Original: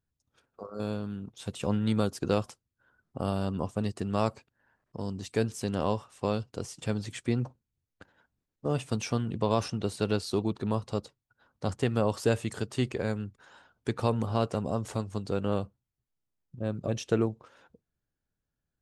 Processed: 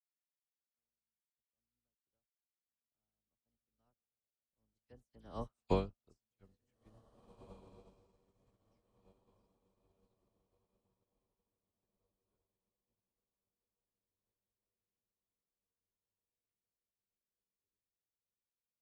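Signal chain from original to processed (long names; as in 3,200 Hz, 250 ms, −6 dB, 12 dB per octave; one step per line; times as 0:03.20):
sub-octave generator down 2 octaves, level −2 dB
source passing by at 0:05.57, 33 m/s, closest 3.3 metres
all-pass dispersion lows, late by 56 ms, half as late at 2,800 Hz
on a send: feedback delay with all-pass diffusion 1,921 ms, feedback 59%, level −5 dB
on the sum: expander for the loud parts 2.5 to 1, over −57 dBFS
level +2.5 dB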